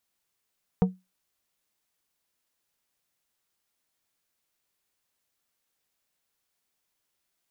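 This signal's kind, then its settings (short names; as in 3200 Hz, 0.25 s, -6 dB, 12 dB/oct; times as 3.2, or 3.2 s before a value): glass hit plate, lowest mode 185 Hz, decay 0.22 s, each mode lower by 6.5 dB, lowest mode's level -14 dB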